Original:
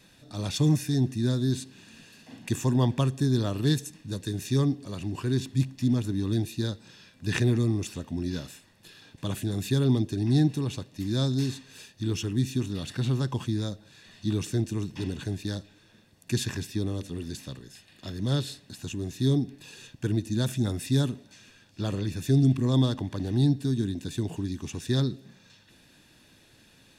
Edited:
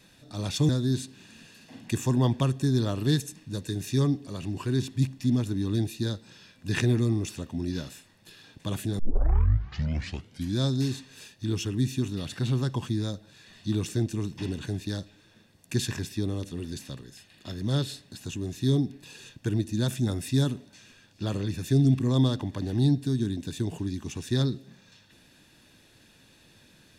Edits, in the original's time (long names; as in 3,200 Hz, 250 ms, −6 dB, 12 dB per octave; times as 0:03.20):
0:00.69–0:01.27: remove
0:09.57: tape start 1.60 s